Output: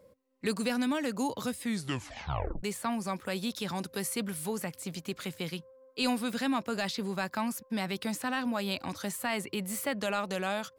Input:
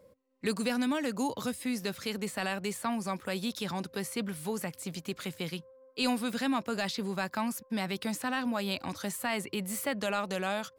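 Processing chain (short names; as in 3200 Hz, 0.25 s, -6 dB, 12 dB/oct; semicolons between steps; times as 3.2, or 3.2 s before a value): 1.61 tape stop 1.02 s; 3.71–4.46 bell 11000 Hz +6.5 dB 1.5 oct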